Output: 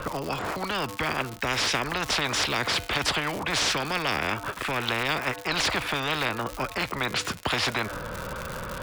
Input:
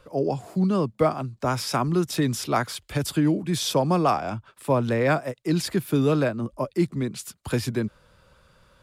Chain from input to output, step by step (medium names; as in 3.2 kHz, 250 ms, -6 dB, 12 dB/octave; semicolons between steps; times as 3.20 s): low-pass 2 kHz 12 dB/octave; in parallel at 0 dB: peak limiter -18.5 dBFS, peak gain reduction 9.5 dB; on the sum: crackle 190 per s -44 dBFS; feedback comb 99 Hz, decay 0.57 s, harmonics odd, mix 30%; spectrum-flattening compressor 10:1